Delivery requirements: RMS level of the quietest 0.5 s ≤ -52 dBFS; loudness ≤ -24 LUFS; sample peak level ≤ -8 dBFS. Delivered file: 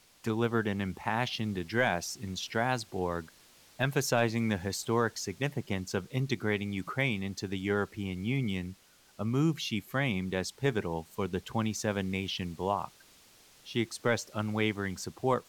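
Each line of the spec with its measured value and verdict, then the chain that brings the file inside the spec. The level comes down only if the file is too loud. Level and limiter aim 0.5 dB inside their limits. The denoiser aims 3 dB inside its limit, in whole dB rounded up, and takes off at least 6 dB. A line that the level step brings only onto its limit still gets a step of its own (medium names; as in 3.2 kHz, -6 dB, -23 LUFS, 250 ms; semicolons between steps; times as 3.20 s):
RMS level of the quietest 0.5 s -59 dBFS: pass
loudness -32.5 LUFS: pass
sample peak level -15.0 dBFS: pass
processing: none needed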